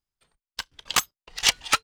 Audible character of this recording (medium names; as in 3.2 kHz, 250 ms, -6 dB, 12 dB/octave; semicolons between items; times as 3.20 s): tremolo saw down 1.4 Hz, depth 85%